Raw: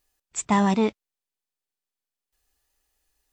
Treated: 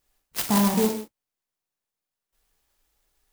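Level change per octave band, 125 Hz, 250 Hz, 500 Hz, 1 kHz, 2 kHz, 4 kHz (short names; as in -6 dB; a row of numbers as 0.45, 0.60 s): 0.0, 0.0, -0.5, -3.5, -2.5, +6.0 dB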